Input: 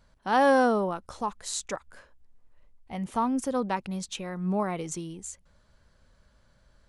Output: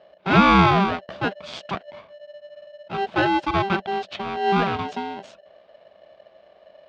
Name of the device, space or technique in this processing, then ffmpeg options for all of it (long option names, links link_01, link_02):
ring modulator pedal into a guitar cabinet: -af "aeval=exprs='val(0)*sgn(sin(2*PI*590*n/s))':channel_layout=same,highpass=84,equalizer=frequency=190:width_type=q:width=4:gain=9,equalizer=frequency=660:width_type=q:width=4:gain=8,equalizer=frequency=1900:width_type=q:width=4:gain=-6,lowpass=frequency=3600:width=0.5412,lowpass=frequency=3600:width=1.3066,volume=6dB"